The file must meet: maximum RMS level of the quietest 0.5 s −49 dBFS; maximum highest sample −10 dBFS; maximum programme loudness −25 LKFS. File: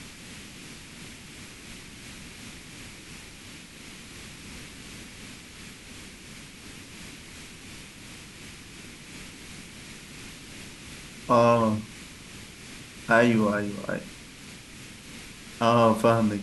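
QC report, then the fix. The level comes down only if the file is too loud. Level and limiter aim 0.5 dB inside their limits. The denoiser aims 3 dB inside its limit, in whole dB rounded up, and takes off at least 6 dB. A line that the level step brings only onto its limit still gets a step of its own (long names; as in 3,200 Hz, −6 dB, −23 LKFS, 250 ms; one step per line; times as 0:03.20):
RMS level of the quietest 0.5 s −45 dBFS: out of spec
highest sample −6.5 dBFS: out of spec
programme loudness −23.0 LKFS: out of spec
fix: broadband denoise 6 dB, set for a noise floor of −45 dBFS
level −2.5 dB
brickwall limiter −10.5 dBFS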